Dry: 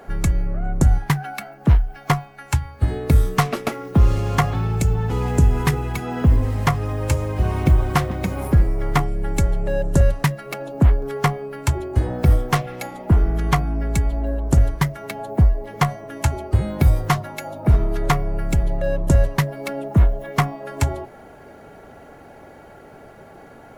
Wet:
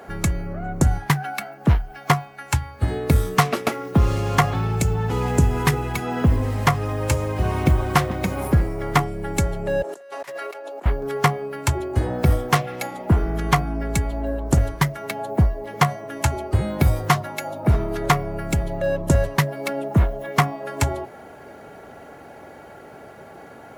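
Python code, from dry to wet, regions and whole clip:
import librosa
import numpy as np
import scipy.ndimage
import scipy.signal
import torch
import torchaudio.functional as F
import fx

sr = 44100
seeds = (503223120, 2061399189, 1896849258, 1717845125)

y = fx.chain(x, sr, fx.highpass(hz=390.0, slope=24),
    fx.high_shelf(hz=11000.0, db=-5.5),
    fx.over_compress(threshold_db=-38.0, ratio=-1.0), at=(9.82, 10.86))
y = scipy.signal.sosfilt(scipy.signal.butter(2, 60.0, 'highpass', fs=sr, output='sos'), y)
y = fx.low_shelf(y, sr, hz=280.0, db=-4.0)
y = F.gain(torch.from_numpy(y), 2.5).numpy()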